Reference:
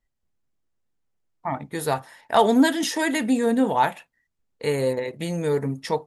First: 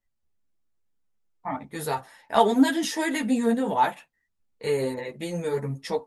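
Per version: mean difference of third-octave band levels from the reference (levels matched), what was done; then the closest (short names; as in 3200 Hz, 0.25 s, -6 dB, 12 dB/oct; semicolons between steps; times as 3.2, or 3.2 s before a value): 1.5 dB: ensemble effect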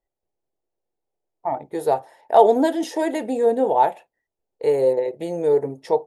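7.0 dB: band shelf 540 Hz +14.5 dB; gain -8.5 dB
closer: first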